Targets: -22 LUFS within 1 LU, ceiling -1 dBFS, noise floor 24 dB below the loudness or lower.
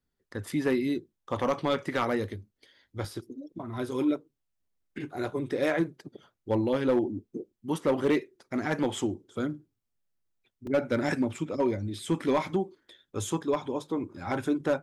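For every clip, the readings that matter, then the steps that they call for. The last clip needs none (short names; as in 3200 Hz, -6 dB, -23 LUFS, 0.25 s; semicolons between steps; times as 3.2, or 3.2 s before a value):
clipped 0.4%; flat tops at -18.0 dBFS; dropouts 2; longest dropout 2.6 ms; loudness -30.5 LUFS; peak -18.0 dBFS; loudness target -22.0 LUFS
-> clip repair -18 dBFS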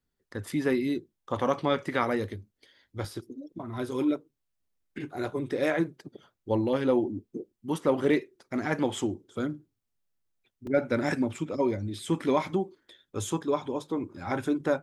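clipped 0.0%; dropouts 2; longest dropout 2.6 ms
-> interpolate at 3.05/10.67, 2.6 ms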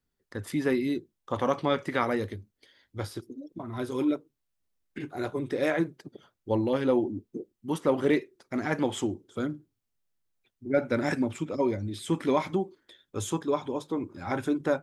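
dropouts 0; loudness -30.0 LUFS; peak -11.0 dBFS; loudness target -22.0 LUFS
-> gain +8 dB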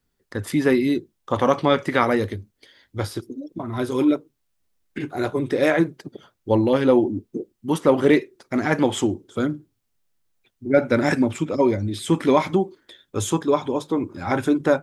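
loudness -22.0 LUFS; peak -3.0 dBFS; noise floor -73 dBFS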